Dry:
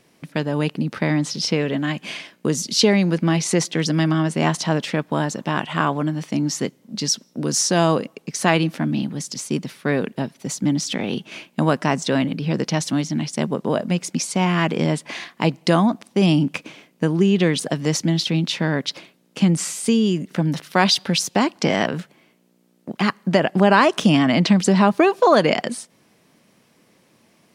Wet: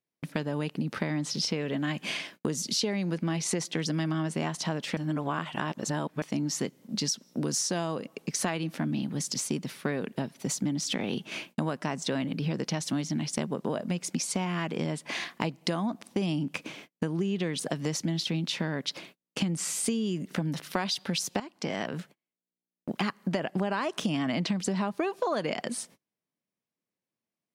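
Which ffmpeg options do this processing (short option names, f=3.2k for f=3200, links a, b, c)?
-filter_complex "[0:a]asplit=4[a][b][c][d];[a]atrim=end=4.972[e];[b]atrim=start=4.968:end=6.222,asetpts=PTS-STARTPTS,areverse[f];[c]atrim=start=6.218:end=21.4,asetpts=PTS-STARTPTS,afade=t=out:st=15.178:d=0.004:c=hsin:silence=0.188365[g];[d]atrim=start=21.4,asetpts=PTS-STARTPTS,afade=t=in:d=1.6:silence=0.188365[h];[e][f]acrossfade=d=0.004:c1=hsin:c2=hsin[i];[g][h]concat=n=2:v=0:a=1[j];[i][j]acrossfade=d=0.004:c1=hsin:c2=hsin,agate=range=-34dB:threshold=-47dB:ratio=16:detection=peak,highshelf=f=11k:g=4,acompressor=threshold=-26dB:ratio=6,volume=-1dB"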